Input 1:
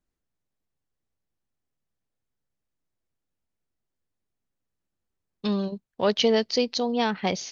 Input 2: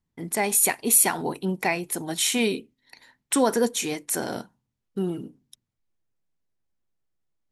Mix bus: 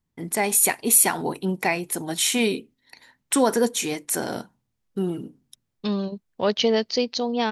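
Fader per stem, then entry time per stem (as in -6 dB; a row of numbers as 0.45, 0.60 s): +0.5, +1.5 dB; 0.40, 0.00 s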